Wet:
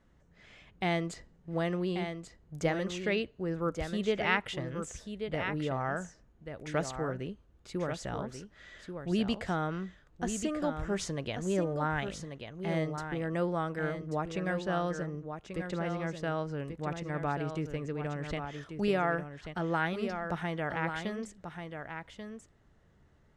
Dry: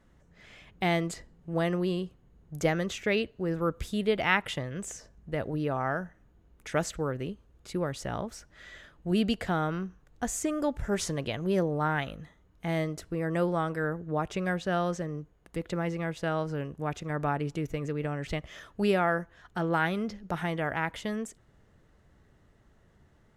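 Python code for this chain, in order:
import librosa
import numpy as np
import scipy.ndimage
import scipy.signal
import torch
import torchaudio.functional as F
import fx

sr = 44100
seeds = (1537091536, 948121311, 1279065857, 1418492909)

y = scipy.signal.sosfilt(scipy.signal.butter(2, 8100.0, 'lowpass', fs=sr, output='sos'), x)
y = y + 10.0 ** (-7.5 / 20.0) * np.pad(y, (int(1137 * sr / 1000.0), 0))[:len(y)]
y = F.gain(torch.from_numpy(y), -3.5).numpy()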